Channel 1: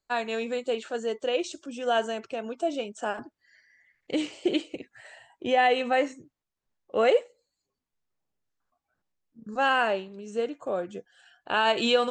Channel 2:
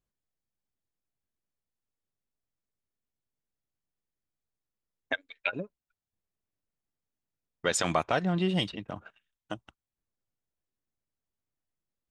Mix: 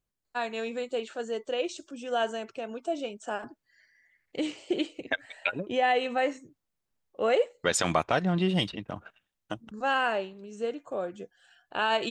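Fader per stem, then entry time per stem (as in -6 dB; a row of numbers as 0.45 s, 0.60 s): -3.0 dB, +1.5 dB; 0.25 s, 0.00 s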